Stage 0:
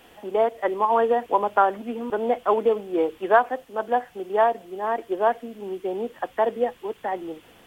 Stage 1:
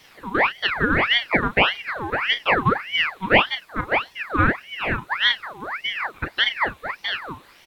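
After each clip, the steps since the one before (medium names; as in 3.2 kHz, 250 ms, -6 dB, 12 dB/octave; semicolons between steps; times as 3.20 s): doubling 34 ms -9 dB; ring modulator with a swept carrier 1.6 kHz, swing 65%, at 1.7 Hz; trim +3.5 dB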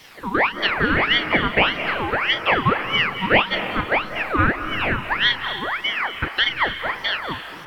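in parallel at +3 dB: compression, threshold -27 dBFS, peak gain reduction 16.5 dB; on the sum: reverberation RT60 1.8 s, pre-delay 158 ms, DRR 8 dB; trim -2.5 dB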